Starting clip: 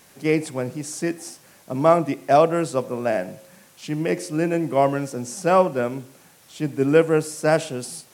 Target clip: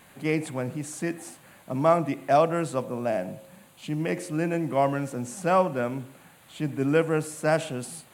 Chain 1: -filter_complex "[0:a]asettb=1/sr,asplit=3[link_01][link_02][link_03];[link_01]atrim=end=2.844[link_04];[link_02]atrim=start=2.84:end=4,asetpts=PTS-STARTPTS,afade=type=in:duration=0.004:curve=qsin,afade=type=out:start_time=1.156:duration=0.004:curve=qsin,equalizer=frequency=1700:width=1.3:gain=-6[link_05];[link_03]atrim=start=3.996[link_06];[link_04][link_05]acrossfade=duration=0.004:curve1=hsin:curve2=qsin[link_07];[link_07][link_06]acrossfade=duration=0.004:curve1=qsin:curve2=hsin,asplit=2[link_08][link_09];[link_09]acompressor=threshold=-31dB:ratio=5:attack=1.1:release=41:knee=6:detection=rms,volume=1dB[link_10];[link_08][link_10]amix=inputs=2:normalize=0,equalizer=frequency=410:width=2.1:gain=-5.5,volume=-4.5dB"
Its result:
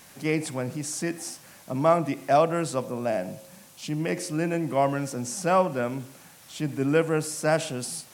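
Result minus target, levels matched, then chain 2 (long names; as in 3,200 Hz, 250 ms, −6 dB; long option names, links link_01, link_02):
4,000 Hz band +4.0 dB
-filter_complex "[0:a]asettb=1/sr,asplit=3[link_01][link_02][link_03];[link_01]atrim=end=2.844[link_04];[link_02]atrim=start=2.84:end=4,asetpts=PTS-STARTPTS,afade=type=in:duration=0.004:curve=qsin,afade=type=out:start_time=1.156:duration=0.004:curve=qsin,equalizer=frequency=1700:width=1.3:gain=-6[link_05];[link_03]atrim=start=3.996[link_06];[link_04][link_05]acrossfade=duration=0.004:curve1=hsin:curve2=qsin[link_07];[link_07][link_06]acrossfade=duration=0.004:curve1=qsin:curve2=hsin,asplit=2[link_08][link_09];[link_09]acompressor=threshold=-31dB:ratio=5:attack=1.1:release=41:knee=6:detection=rms,lowpass=frequency=5600:width=0.5412,lowpass=frequency=5600:width=1.3066,volume=1dB[link_10];[link_08][link_10]amix=inputs=2:normalize=0,equalizer=frequency=410:width=2.1:gain=-5.5,volume=-4.5dB"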